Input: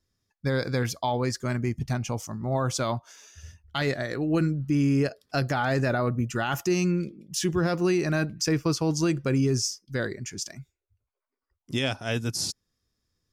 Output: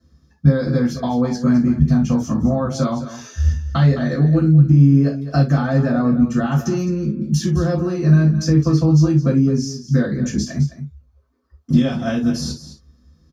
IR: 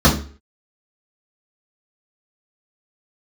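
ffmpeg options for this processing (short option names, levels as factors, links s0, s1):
-filter_complex "[0:a]acompressor=threshold=0.0141:ratio=10,aecho=1:1:212:0.237[s0];[1:a]atrim=start_sample=2205,atrim=end_sample=3528[s1];[s0][s1]afir=irnorm=-1:irlink=0,volume=0.376"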